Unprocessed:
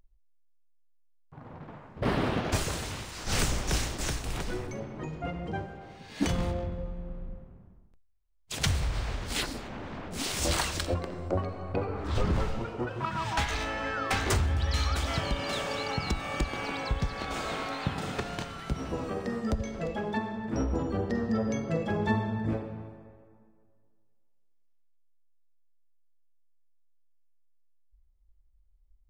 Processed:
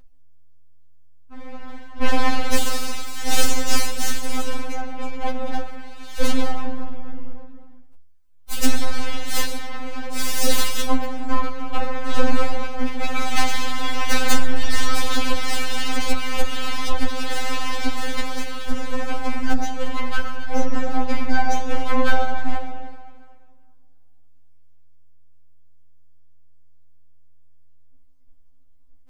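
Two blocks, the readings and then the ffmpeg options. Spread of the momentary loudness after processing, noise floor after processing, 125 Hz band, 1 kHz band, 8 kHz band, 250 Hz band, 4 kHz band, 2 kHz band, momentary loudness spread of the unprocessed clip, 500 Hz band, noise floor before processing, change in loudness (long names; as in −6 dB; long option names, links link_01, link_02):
11 LU, −41 dBFS, −2.0 dB, +8.0 dB, +8.5 dB, +4.5 dB, +8.0 dB, +8.0 dB, 11 LU, +4.0 dB, −62 dBFS, +5.5 dB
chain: -af "aeval=exprs='abs(val(0))':channel_layout=same,acontrast=88,afftfilt=real='re*3.46*eq(mod(b,12),0)':imag='im*3.46*eq(mod(b,12),0)':win_size=2048:overlap=0.75,volume=5dB"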